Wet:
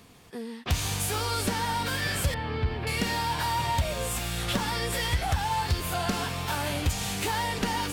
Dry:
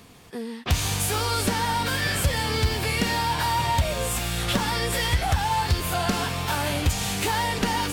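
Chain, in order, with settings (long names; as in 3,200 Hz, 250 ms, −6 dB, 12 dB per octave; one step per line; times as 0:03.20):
0:02.34–0:02.87: high-frequency loss of the air 410 metres
level −4 dB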